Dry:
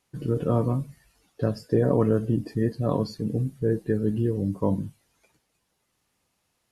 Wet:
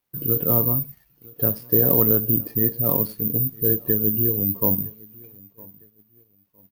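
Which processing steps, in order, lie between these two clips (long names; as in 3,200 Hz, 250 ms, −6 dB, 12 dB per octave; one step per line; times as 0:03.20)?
gap after every zero crossing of 0.076 ms
bad sample-rate conversion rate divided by 3×, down filtered, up zero stuff
on a send: repeating echo 959 ms, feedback 39%, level −24 dB
on the sum: noise gate −49 dBFS, range −6 dB
level −1 dB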